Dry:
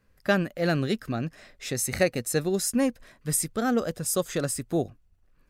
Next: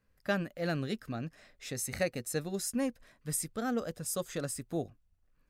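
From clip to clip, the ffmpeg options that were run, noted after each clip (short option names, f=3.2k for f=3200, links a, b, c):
-af "bandreject=f=370:w=12,volume=-8dB"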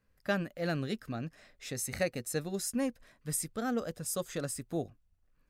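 -af anull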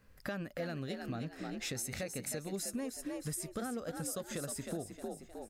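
-filter_complex "[0:a]alimiter=level_in=4.5dB:limit=-24dB:level=0:latency=1:release=323,volume=-4.5dB,asplit=5[a][b][c][d][e];[b]adelay=311,afreqshift=56,volume=-8dB[f];[c]adelay=622,afreqshift=112,volume=-17.9dB[g];[d]adelay=933,afreqshift=168,volume=-27.8dB[h];[e]adelay=1244,afreqshift=224,volume=-37.7dB[i];[a][f][g][h][i]amix=inputs=5:normalize=0,acompressor=threshold=-48dB:ratio=4,volume=10dB"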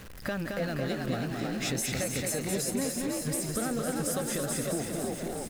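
-filter_complex "[0:a]aeval=exprs='val(0)+0.5*0.00473*sgn(val(0))':c=same,asplit=2[a][b];[b]aecho=0:1:220|506|877.8|1361|1989:0.631|0.398|0.251|0.158|0.1[c];[a][c]amix=inputs=2:normalize=0,volume=5dB"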